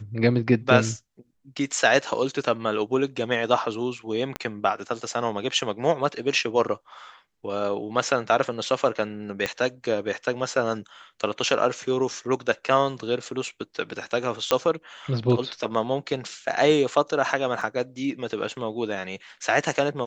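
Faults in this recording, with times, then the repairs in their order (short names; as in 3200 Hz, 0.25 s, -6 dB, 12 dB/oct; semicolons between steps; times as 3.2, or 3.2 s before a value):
4.36 pop -13 dBFS
9.46 pop -11 dBFS
14.51 pop -5 dBFS
17.61 gap 3.9 ms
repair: de-click; interpolate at 17.61, 3.9 ms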